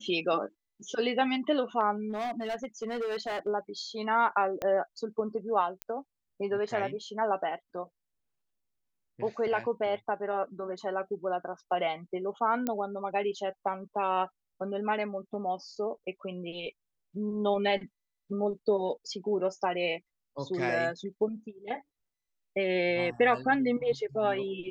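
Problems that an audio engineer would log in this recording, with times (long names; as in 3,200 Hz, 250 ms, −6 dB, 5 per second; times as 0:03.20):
0:02.10–0:03.48: clipping −29.5 dBFS
0:04.62: click −19 dBFS
0:05.82: click −18 dBFS
0:12.67: click −16 dBFS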